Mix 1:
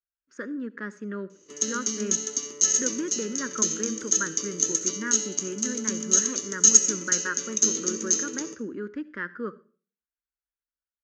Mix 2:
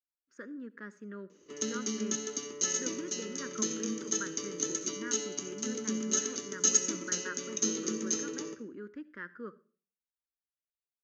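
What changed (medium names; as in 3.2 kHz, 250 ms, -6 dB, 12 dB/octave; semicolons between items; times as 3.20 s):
speech -10.0 dB; background: add distance through air 140 m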